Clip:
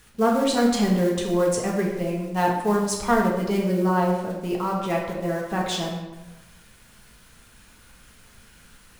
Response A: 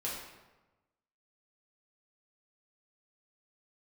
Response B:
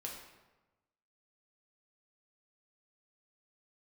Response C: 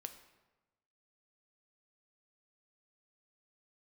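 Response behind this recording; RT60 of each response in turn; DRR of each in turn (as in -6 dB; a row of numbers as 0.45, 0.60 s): B; 1.1, 1.1, 1.1 s; -6.5, -2.0, 7.5 dB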